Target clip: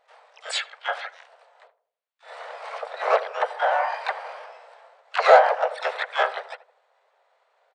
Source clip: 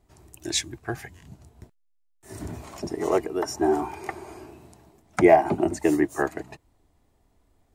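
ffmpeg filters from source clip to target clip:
-filter_complex "[0:a]asplit=2[a][b];[b]highpass=f=720:p=1,volume=19dB,asoftclip=type=tanh:threshold=-3dB[c];[a][c]amix=inputs=2:normalize=0,lowpass=f=1.5k:p=1,volume=-6dB,afftfilt=real='re*between(b*sr/4096,500,4700)':imag='im*between(b*sr/4096,500,4700)':win_size=4096:overlap=0.75,asplit=4[d][e][f][g];[e]asetrate=35002,aresample=44100,atempo=1.25992,volume=-4dB[h];[f]asetrate=55563,aresample=44100,atempo=0.793701,volume=-9dB[i];[g]asetrate=88200,aresample=44100,atempo=0.5,volume=-7dB[j];[d][h][i][j]amix=inputs=4:normalize=0,asplit=2[k][l];[l]adelay=80,lowpass=f=940:p=1,volume=-13.5dB,asplit=2[m][n];[n]adelay=80,lowpass=f=940:p=1,volume=0.49,asplit=2[o][p];[p]adelay=80,lowpass=f=940:p=1,volume=0.49,asplit=2[q][r];[r]adelay=80,lowpass=f=940:p=1,volume=0.49,asplit=2[s][t];[t]adelay=80,lowpass=f=940:p=1,volume=0.49[u];[m][o][q][s][u]amix=inputs=5:normalize=0[v];[k][v]amix=inputs=2:normalize=0,volume=-3dB"

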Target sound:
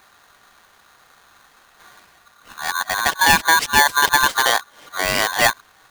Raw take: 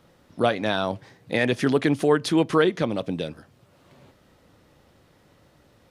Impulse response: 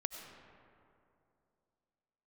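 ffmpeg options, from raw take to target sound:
-af "areverse,aeval=exprs='val(0)*sgn(sin(2*PI*1300*n/s))':c=same,volume=5dB"

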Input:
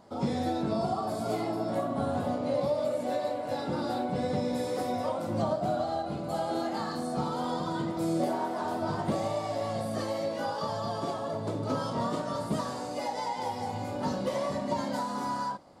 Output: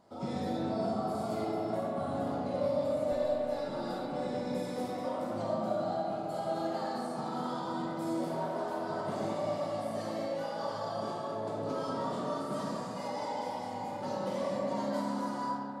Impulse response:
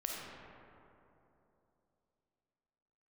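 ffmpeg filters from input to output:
-filter_complex "[0:a]asetnsamples=n=441:p=0,asendcmd='3.12 equalizer g -13.5',equalizer=f=67:t=o:w=1.3:g=-2.5[a];[1:a]atrim=start_sample=2205[b];[a][b]afir=irnorm=-1:irlink=0,volume=-5.5dB"

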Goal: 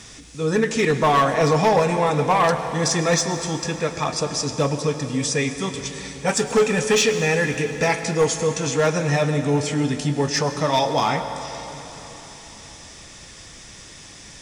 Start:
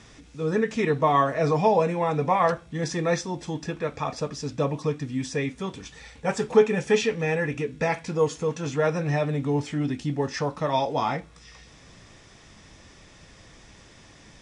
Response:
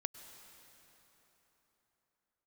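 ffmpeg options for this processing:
-filter_complex "[0:a]crystalizer=i=3:c=0,asoftclip=type=hard:threshold=-16.5dB[a];[1:a]atrim=start_sample=2205[b];[a][b]afir=irnorm=-1:irlink=0,volume=6dB"

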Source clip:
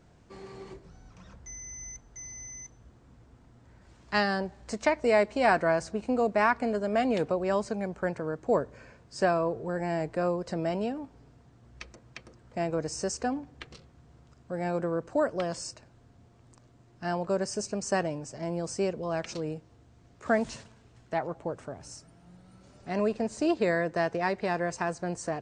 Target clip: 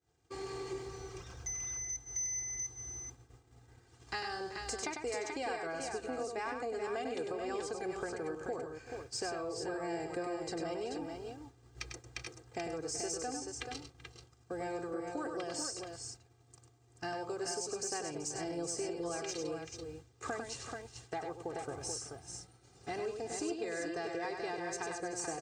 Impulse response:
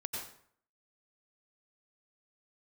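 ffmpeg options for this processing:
-filter_complex "[0:a]highshelf=f=4.9k:g=11.5,aecho=1:1:2.5:0.84,acompressor=threshold=-38dB:ratio=6,asplit=2[a][b];[b]aecho=0:1:99|383|433:0.501|0.2|0.531[c];[a][c]amix=inputs=2:normalize=0,agate=range=-33dB:threshold=-43dB:ratio=3:detection=peak,asplit=2[d][e];[e]asoftclip=type=tanh:threshold=-32dB,volume=-8dB[f];[d][f]amix=inputs=2:normalize=0,highpass=61,volume=-2.5dB"

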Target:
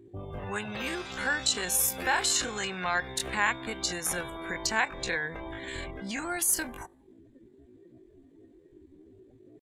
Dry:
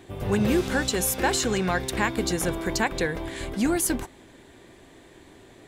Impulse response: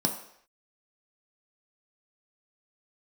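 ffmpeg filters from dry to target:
-filter_complex "[0:a]afftdn=nr=25:nf=-42,acrossover=split=770|6000[a][b][c];[a]acompressor=threshold=-37dB:ratio=12[d];[d][b][c]amix=inputs=3:normalize=0,atempo=0.59"

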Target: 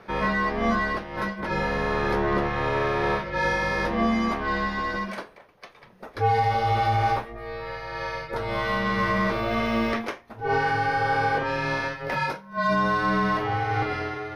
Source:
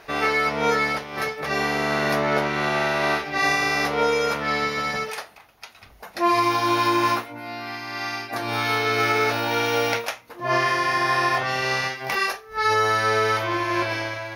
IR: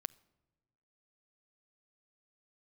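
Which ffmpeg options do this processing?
-filter_complex "[0:a]asplit=2[a][b];[b]highpass=f=720:p=1,volume=8dB,asoftclip=type=tanh:threshold=-10.5dB[c];[a][c]amix=inputs=2:normalize=0,lowpass=f=1k:p=1,volume=-6dB,afreqshift=-240"

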